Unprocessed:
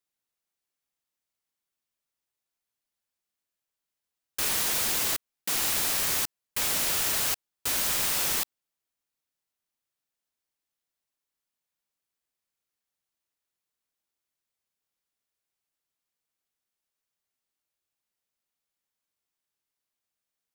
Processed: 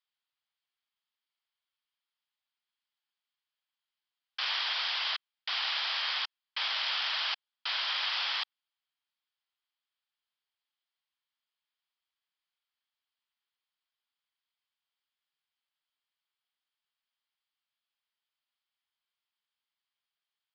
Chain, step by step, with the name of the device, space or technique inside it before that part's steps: musical greeting card (resampled via 11.025 kHz; high-pass 830 Hz 24 dB/octave; peaking EQ 3.2 kHz +7.5 dB 0.22 oct)

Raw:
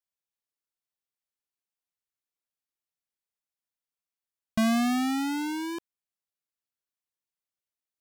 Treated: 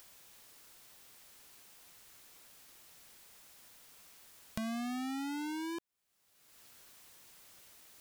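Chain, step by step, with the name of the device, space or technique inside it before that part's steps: upward and downward compression (upward compressor, threshold -35 dBFS; compression 6:1, threshold -41 dBFS, peak gain reduction 16 dB); trim +1.5 dB

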